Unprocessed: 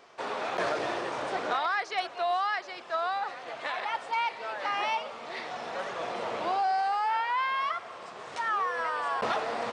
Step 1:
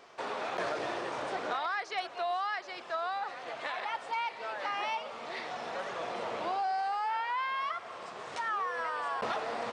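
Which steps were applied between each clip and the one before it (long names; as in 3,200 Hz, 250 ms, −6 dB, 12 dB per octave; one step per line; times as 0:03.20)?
downward compressor 1.5 to 1, threshold −38 dBFS, peak gain reduction 5 dB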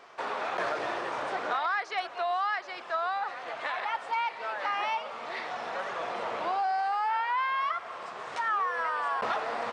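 parametric band 1,300 Hz +6.5 dB 2.3 octaves
level −1.5 dB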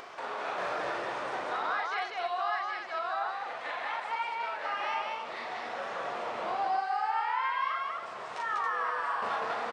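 on a send: loudspeakers that aren't time-aligned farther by 13 metres −1 dB, 67 metres −1 dB, 95 metres −5 dB
on the sum: upward compression, threshold −30 dBFS
level −6.5 dB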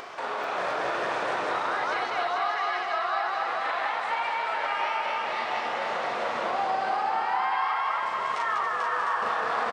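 brickwall limiter −26.5 dBFS, peak gain reduction 6.5 dB
bouncing-ball delay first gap 440 ms, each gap 0.6×, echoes 5
level +5.5 dB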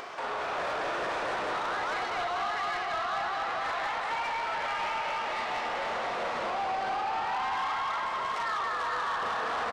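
soft clipping −27 dBFS, distortion −12 dB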